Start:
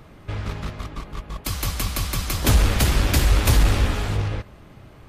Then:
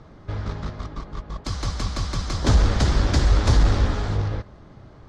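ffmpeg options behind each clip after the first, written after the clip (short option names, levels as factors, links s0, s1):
-af "lowpass=f=6100:w=0.5412,lowpass=f=6100:w=1.3066,equalizer=f=2600:w=2:g=-10.5"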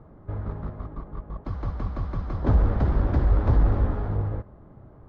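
-af "lowpass=1100,volume=0.75"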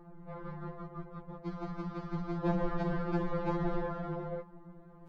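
-af "afftfilt=real='re*2.83*eq(mod(b,8),0)':imag='im*2.83*eq(mod(b,8),0)':win_size=2048:overlap=0.75"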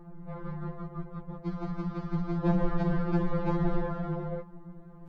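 -af "bass=f=250:g=6,treble=f=4000:g=0,volume=1.19"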